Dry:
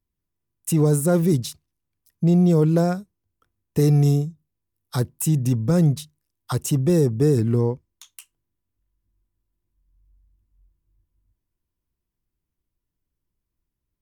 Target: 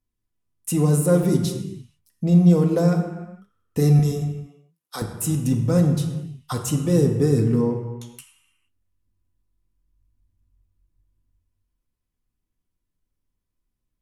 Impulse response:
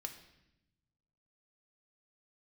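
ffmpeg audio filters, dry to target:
-filter_complex "[0:a]asettb=1/sr,asplit=3[a][b][c];[a]atrim=end=3.994[d];[b]atrim=start=3.99:end=5.02,asetpts=PTS-STARTPTS,afade=t=in:d=0.004:c=qsin,afade=t=out:st=1.026:d=0.004:c=qsin,highpass=440[e];[c]atrim=start=5.016[f];[d][e]acrossfade=d=0.004:c1=hsin:c2=qsin[g];[g][f]acrossfade=d=0.004:c1=qsin:c2=hsin[h];[1:a]atrim=start_sample=2205,afade=t=out:st=0.32:d=0.01,atrim=end_sample=14553,asetrate=25137,aresample=44100[i];[h][i]afir=irnorm=-1:irlink=0"

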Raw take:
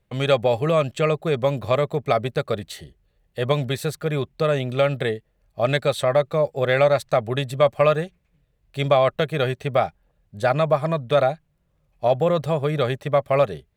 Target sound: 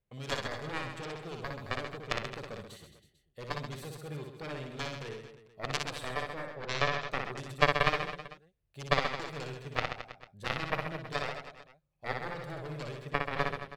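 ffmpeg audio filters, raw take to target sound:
-filter_complex "[0:a]asettb=1/sr,asplit=3[a][b][c];[a]atrim=end=6.434[d];[b]atrim=start=6.43:end=7.11,asetpts=PTS-STARTPTS,afade=t=in:d=0.004:c=qsin,afade=t=out:st=0.676:d=0.004:c=qsin,lowpass=f=3.8k:w=0.5412,lowpass=f=3.8k:w=1.3066[e];[c]atrim=start=7.106[f];[d][e]acrossfade=d=0.004:c1=hsin:c2=qsin[g];[g][f]acrossfade=d=0.004:c1=qsin:c2=hsin,aeval=exprs='0.668*(cos(1*acos(clip(val(0)/0.668,-1,1)))-cos(1*PI/2))+0.0237*(cos(2*acos(clip(val(0)/0.668,-1,1)))-cos(2*PI/2))+0.266*(cos(3*acos(clip(val(0)/0.668,-1,1)))-cos(3*PI/2))+0.00473*(cos(4*acos(clip(val(0)/0.668,-1,1)))-cos(4*PI/2))+0.00422*(cos(5*acos(clip(val(0)/0.668,-1,1)))-cos(5*PI/2))':c=same,aecho=1:1:60|132|218.4|322.1|446.5:0.631|0.398|0.251|0.158|0.1,volume=-1dB"

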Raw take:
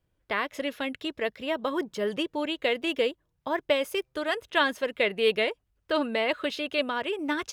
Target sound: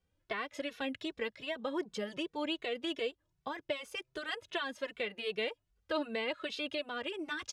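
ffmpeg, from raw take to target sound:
-filter_complex "[0:a]lowpass=7k,highshelf=f=4.3k:g=6.5,asplit=2[a][b];[b]acompressor=threshold=-32dB:ratio=6,volume=1dB[c];[a][c]amix=inputs=2:normalize=0,alimiter=limit=-14dB:level=0:latency=1:release=322,asplit=2[d][e];[e]adelay=2.2,afreqshift=2.6[f];[d][f]amix=inputs=2:normalize=1,volume=-8dB"

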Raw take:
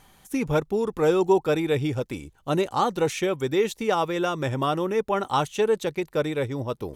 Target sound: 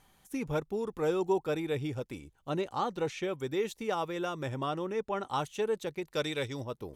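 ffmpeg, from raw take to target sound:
-filter_complex "[0:a]asettb=1/sr,asplit=3[a][b][c];[a]atrim=end=2.194[d];[b]atrim=start=2.19:end=3.29,asetpts=PTS-STARTPTS,afade=t=in:d=0.004:c=qsin,afade=t=out:st=1.096:d=0.004:c=qsin,acrossover=split=6400[e][f];[f]acompressor=threshold=-56dB:ratio=4:attack=1:release=60[g];[e][g]amix=inputs=2:normalize=0[h];[c]atrim=start=3.286[i];[d][h]acrossfade=d=0.004:c1=hsin:c2=qsin[j];[j][i]acrossfade=d=0.004:c1=qsin:c2=hsin,asettb=1/sr,asplit=3[k][l][m];[k]atrim=end=4.584[n];[l]atrim=start=4.58:end=5.3,asetpts=PTS-STARTPTS,afade=t=in:d=0.004:c=qsin,afade=t=out:st=0.716:d=0.004:c=qsin,lowpass=8.7k[o];[m]atrim=start=5.296[p];[n][o]acrossfade=d=0.004:c1=hsin:c2=qsin[q];[q][p]acrossfade=d=0.004:c1=qsin:c2=hsin,asplit=3[r][s][t];[r]afade=t=out:st=6.12:d=0.02[u];[s]equalizer=f=4.8k:t=o:w=2.4:g=13.5,afade=t=in:st=6.12:d=0.02,afade=t=out:st=6.63:d=0.02[v];[t]afade=t=in:st=6.63:d=0.02[w];[u][v][w]amix=inputs=3:normalize=0,volume=-9dB"

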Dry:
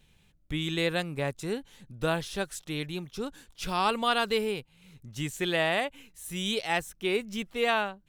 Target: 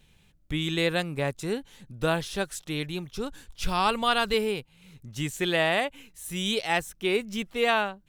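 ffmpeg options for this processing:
-filter_complex "[0:a]asettb=1/sr,asplit=3[a][b][c];[a]atrim=end=2.784[d];[b]atrim=start=2.78:end=4.34,asetpts=PTS-STARTPTS,afade=t=in:d=0.004:c=qsin,afade=t=out:st=1.556:d=0.004:c=qsin,asubboost=boost=8:cutoff=130[e];[c]atrim=start=4.336[f];[d][e]acrossfade=d=0.004:c1=hsin:c2=qsin[g];[g][f]acrossfade=d=0.004:c1=qsin:c2=hsin,volume=2.5dB"

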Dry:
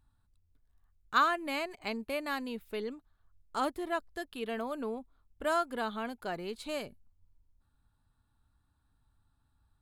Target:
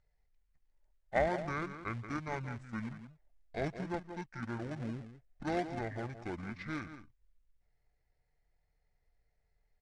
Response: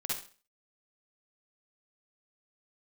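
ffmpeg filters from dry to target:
-filter_complex "[0:a]asplit=2[a][b];[b]adelay=174.9,volume=-10dB,highshelf=f=4k:g=-3.94[c];[a][c]amix=inputs=2:normalize=0,asplit=2[d][e];[e]acrusher=samples=33:mix=1:aa=0.000001:lfo=1:lforange=33:lforate=2.8,volume=-9dB[f];[d][f]amix=inputs=2:normalize=0,equalizer=f=3.6k:w=1.1:g=7.5,asetrate=22696,aresample=44100,atempo=1.94306,lowpass=7.1k,volume=-5.5dB"

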